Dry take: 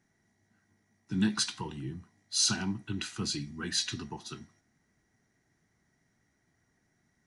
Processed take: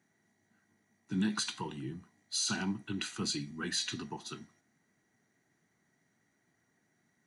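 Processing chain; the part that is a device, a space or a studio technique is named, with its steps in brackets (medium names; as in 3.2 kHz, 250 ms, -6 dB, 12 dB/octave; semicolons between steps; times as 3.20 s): PA system with an anti-feedback notch (high-pass 150 Hz 12 dB/octave; Butterworth band-stop 5.3 kHz, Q 8; peak limiter -23 dBFS, peak gain reduction 7.5 dB)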